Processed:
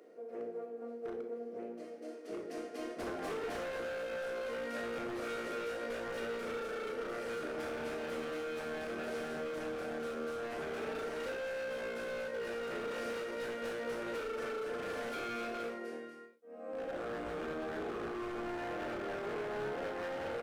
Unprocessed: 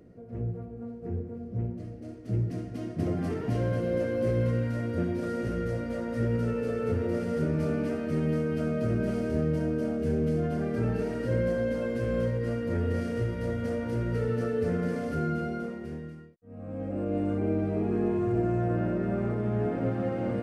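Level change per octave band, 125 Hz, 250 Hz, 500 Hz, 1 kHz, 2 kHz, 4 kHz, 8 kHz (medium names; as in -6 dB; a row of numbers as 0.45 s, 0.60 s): -27.5 dB, -15.0 dB, -7.0 dB, -2.0 dB, +0.5 dB, +3.5 dB, no reading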